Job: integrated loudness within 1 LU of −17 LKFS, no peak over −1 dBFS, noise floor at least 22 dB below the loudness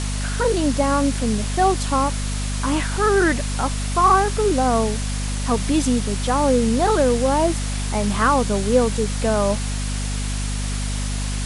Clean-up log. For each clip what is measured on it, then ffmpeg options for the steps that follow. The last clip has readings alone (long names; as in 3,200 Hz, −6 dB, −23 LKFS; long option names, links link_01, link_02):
mains hum 50 Hz; hum harmonics up to 250 Hz; level of the hum −22 dBFS; background noise floor −24 dBFS; target noise floor −43 dBFS; integrated loudness −20.5 LKFS; sample peak −5.0 dBFS; target loudness −17.0 LKFS
→ -af "bandreject=frequency=50:width_type=h:width=6,bandreject=frequency=100:width_type=h:width=6,bandreject=frequency=150:width_type=h:width=6,bandreject=frequency=200:width_type=h:width=6,bandreject=frequency=250:width_type=h:width=6"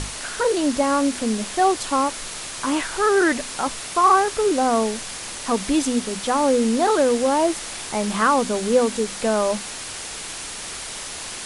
mains hum none found; background noise floor −33 dBFS; target noise floor −44 dBFS
→ -af "afftdn=noise_reduction=11:noise_floor=-33"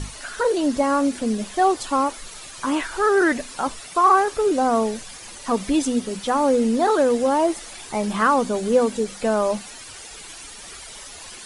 background noise floor −40 dBFS; target noise floor −43 dBFS
→ -af "afftdn=noise_reduction=6:noise_floor=-40"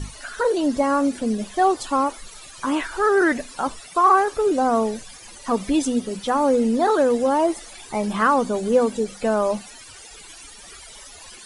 background noise floor −43 dBFS; integrated loudness −21.0 LKFS; sample peak −6.0 dBFS; target loudness −17.0 LKFS
→ -af "volume=4dB"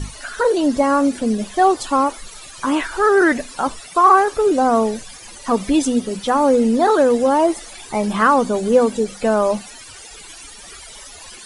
integrated loudness −17.0 LKFS; sample peak −2.0 dBFS; background noise floor −39 dBFS